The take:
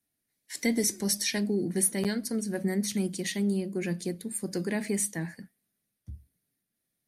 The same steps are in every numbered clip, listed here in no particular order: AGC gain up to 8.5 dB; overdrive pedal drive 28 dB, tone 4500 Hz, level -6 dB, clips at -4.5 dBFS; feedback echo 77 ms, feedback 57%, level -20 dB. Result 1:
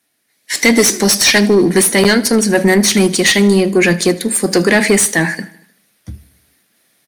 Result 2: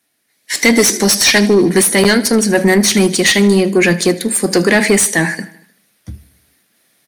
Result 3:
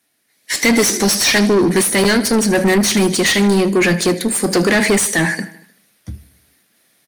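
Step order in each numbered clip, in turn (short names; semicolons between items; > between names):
overdrive pedal > AGC > feedback echo; feedback echo > overdrive pedal > AGC; AGC > feedback echo > overdrive pedal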